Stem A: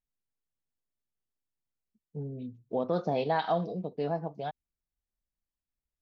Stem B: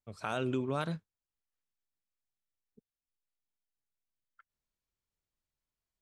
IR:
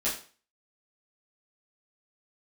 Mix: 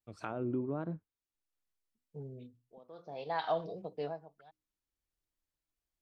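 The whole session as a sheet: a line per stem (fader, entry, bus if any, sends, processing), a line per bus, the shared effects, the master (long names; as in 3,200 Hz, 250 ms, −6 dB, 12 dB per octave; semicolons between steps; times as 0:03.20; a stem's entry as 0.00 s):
−3.0 dB, 0.00 s, no send, parametric band 210 Hz −10 dB 1.1 octaves; mains-hum notches 60/120/180/240/300 Hz; automatic ducking −22 dB, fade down 0.35 s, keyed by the second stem
−3.5 dB, 0.00 s, no send, treble cut that deepens with the level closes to 840 Hz, closed at −31.5 dBFS; parametric band 310 Hz +9 dB 0.3 octaves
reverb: not used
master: pitch vibrato 1.6 Hz 62 cents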